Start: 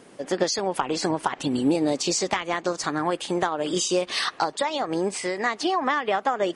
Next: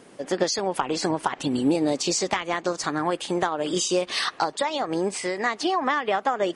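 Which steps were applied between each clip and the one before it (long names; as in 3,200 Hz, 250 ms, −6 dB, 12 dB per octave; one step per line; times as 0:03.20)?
no processing that can be heard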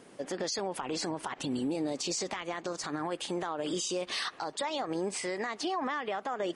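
brickwall limiter −20 dBFS, peak gain reduction 10.5 dB
level −4.5 dB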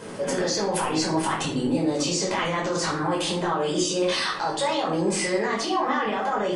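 in parallel at −1.5 dB: compressor whose output falls as the input rises −41 dBFS, ratio −0.5
on the sum: rectangular room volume 610 cubic metres, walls furnished, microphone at 5 metres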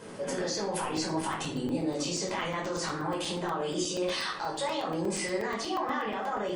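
regular buffer underruns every 0.12 s, samples 128, zero, from 0:00.97
level −7 dB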